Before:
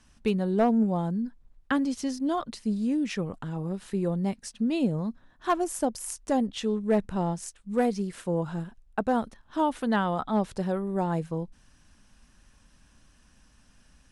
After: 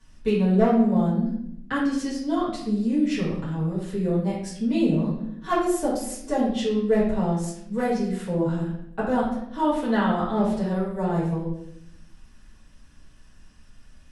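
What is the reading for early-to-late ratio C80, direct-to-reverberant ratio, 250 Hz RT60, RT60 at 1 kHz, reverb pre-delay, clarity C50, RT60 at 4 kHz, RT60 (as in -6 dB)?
6.0 dB, -11.0 dB, 1.2 s, 0.65 s, 4 ms, 2.5 dB, 0.60 s, 0.75 s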